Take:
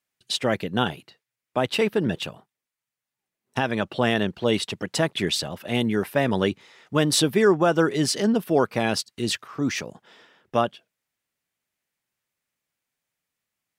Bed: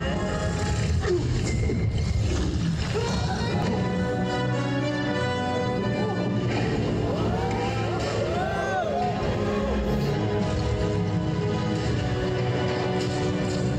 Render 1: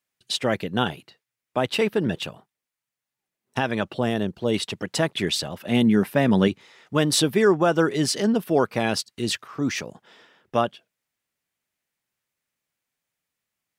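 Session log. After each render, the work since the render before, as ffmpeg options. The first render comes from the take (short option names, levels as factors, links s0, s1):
-filter_complex "[0:a]asettb=1/sr,asplit=3[s0][s1][s2];[s0]atrim=end=3.944[s3];[s1]atrim=start=3.94:end=4.54,asetpts=PTS-STARTPTS,afade=t=in:d=0.004:c=qsin,afade=t=out:st=0.596:d=0.004:c=qsin,equalizer=f=2100:w=0.51:g=-8.5[s4];[s2]atrim=start=4.536[s5];[s3][s4]acrossfade=d=0.004:c1=hsin:c2=qsin[s6];[s6][s5]acrossfade=d=0.004:c1=qsin:c2=hsin,asettb=1/sr,asplit=3[s7][s8][s9];[s7]atrim=end=5.664[s10];[s8]atrim=start=5.66:end=6.48,asetpts=PTS-STARTPTS,afade=t=in:d=0.004:c=qsin,afade=t=out:st=0.816:d=0.004:c=qsin,equalizer=f=200:w=1.5:g=8[s11];[s9]atrim=start=6.476[s12];[s10][s11]acrossfade=d=0.004:c1=hsin:c2=qsin[s13];[s13][s12]acrossfade=d=0.004:c1=qsin:c2=hsin"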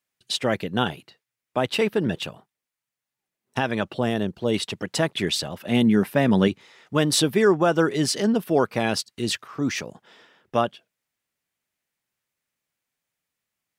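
-af anull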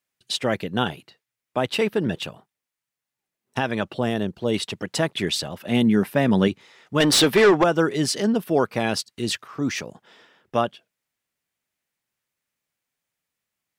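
-filter_complex "[0:a]asettb=1/sr,asplit=3[s0][s1][s2];[s0]atrim=end=7.004[s3];[s1]atrim=start=7:end=7.64,asetpts=PTS-STARTPTS,afade=t=in:d=0.004:c=qsin,afade=t=out:st=0.636:d=0.004:c=qsin,asplit=2[s4][s5];[s5]highpass=f=720:p=1,volume=10,asoftclip=type=tanh:threshold=0.422[s6];[s4][s6]amix=inputs=2:normalize=0,lowpass=f=4600:p=1,volume=0.501[s7];[s2]atrim=start=7.636[s8];[s3][s7]acrossfade=d=0.004:c1=hsin:c2=qsin[s9];[s9][s8]acrossfade=d=0.004:c1=qsin:c2=hsin"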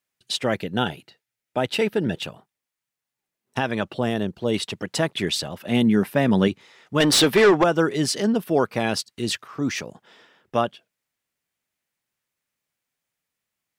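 -filter_complex "[0:a]asettb=1/sr,asplit=3[s0][s1][s2];[s0]atrim=end=0.604[s3];[s1]atrim=start=0.6:end=2.23,asetpts=PTS-STARTPTS,afade=t=in:d=0.004:c=qsin,afade=t=out:st=1.626:d=0.004:c=qsin,asuperstop=centerf=1100:order=4:qfactor=5.9[s4];[s2]atrim=start=2.226[s5];[s3][s4]acrossfade=d=0.004:c1=hsin:c2=qsin[s6];[s6][s5]acrossfade=d=0.004:c1=qsin:c2=hsin"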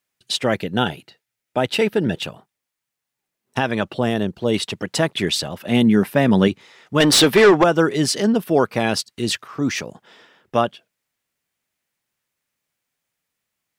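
-af "volume=1.5"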